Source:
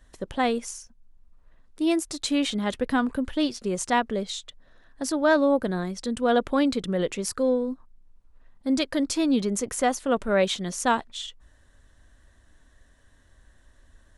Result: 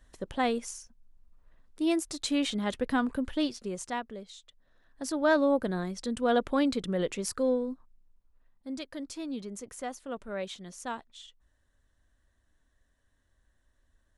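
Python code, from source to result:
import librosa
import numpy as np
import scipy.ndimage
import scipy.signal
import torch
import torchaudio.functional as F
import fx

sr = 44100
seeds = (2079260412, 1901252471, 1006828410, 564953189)

y = fx.gain(x, sr, db=fx.line((3.39, -4.0), (4.31, -16.0), (5.25, -4.0), (7.52, -4.0), (8.73, -14.0)))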